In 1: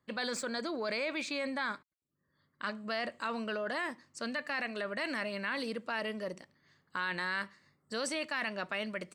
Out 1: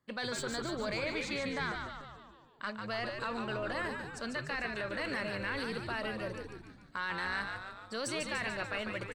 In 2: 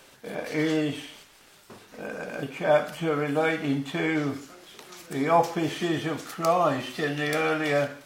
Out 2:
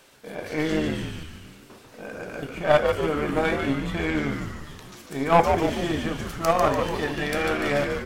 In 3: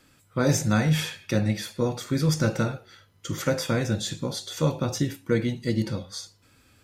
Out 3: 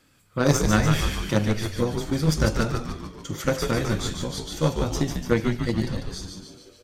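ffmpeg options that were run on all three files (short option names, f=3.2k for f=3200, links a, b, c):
-filter_complex "[0:a]aeval=exprs='0.355*(cos(1*acos(clip(val(0)/0.355,-1,1)))-cos(1*PI/2))+0.0251*(cos(2*acos(clip(val(0)/0.355,-1,1)))-cos(2*PI/2))+0.0708*(cos(3*acos(clip(val(0)/0.355,-1,1)))-cos(3*PI/2))+0.0224*(cos(4*acos(clip(val(0)/0.355,-1,1)))-cos(4*PI/2))':c=same,asplit=9[a][b][c][d][e][f][g][h][i];[b]adelay=146,afreqshift=-100,volume=-5dB[j];[c]adelay=292,afreqshift=-200,volume=-9.9dB[k];[d]adelay=438,afreqshift=-300,volume=-14.8dB[l];[e]adelay=584,afreqshift=-400,volume=-19.6dB[m];[f]adelay=730,afreqshift=-500,volume=-24.5dB[n];[g]adelay=876,afreqshift=-600,volume=-29.4dB[o];[h]adelay=1022,afreqshift=-700,volume=-34.3dB[p];[i]adelay=1168,afreqshift=-800,volume=-39.2dB[q];[a][j][k][l][m][n][o][p][q]amix=inputs=9:normalize=0,volume=6dB"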